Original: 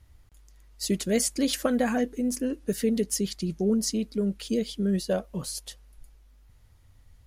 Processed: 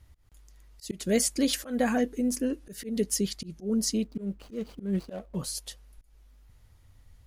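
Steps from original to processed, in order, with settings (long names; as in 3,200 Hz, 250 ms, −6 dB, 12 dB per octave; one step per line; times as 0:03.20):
0:04.04–0:05.36: running median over 25 samples
volume swells 181 ms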